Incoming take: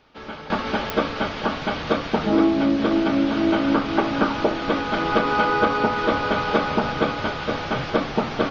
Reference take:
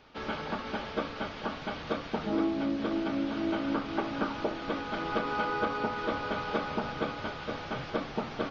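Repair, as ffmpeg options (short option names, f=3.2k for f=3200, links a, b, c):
-af "adeclick=t=4,asetnsamples=n=441:p=0,asendcmd='0.5 volume volume -11dB',volume=0dB"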